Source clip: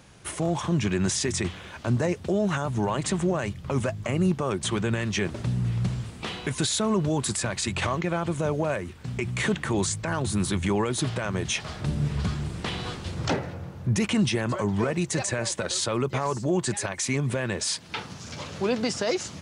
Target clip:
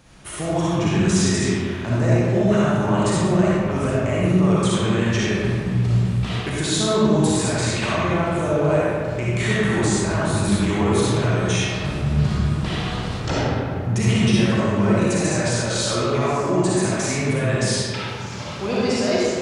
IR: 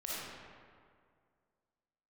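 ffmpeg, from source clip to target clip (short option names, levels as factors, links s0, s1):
-filter_complex "[0:a]lowshelf=f=60:g=7.5[s0];[1:a]atrim=start_sample=2205[s1];[s0][s1]afir=irnorm=-1:irlink=0,volume=1.5"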